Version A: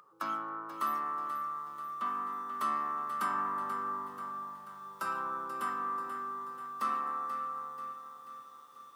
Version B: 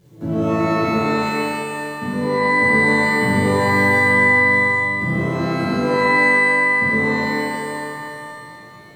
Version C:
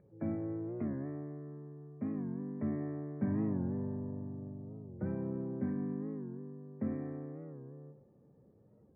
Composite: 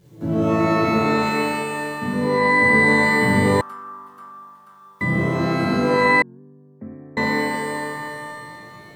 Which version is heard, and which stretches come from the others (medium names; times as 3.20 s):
B
3.61–5.01 s: from A
6.22–7.17 s: from C